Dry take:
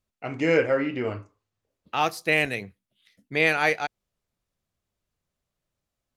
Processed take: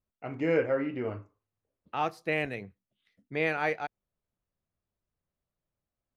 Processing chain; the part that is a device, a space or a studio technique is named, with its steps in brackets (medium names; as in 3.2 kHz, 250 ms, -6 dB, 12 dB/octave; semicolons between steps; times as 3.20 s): behind a face mask (treble shelf 2.9 kHz -7.5 dB); treble shelf 3.4 kHz -8 dB; trim -4.5 dB